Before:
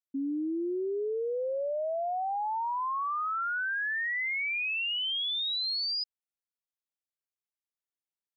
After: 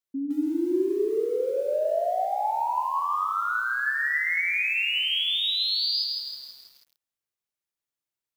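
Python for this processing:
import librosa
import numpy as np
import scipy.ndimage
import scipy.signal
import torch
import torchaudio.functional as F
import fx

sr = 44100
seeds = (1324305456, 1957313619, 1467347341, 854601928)

y = fx.lowpass(x, sr, hz=2300.0, slope=6, at=(2.19, 3.85), fade=0.02)
y = fx.echo_feedback(y, sr, ms=104, feedback_pct=40, wet_db=-11)
y = fx.rev_fdn(y, sr, rt60_s=1.1, lf_ratio=1.4, hf_ratio=0.6, size_ms=48.0, drr_db=8.0)
y = fx.echo_crushed(y, sr, ms=163, feedback_pct=55, bits=9, wet_db=-4)
y = F.gain(torch.from_numpy(y), 3.0).numpy()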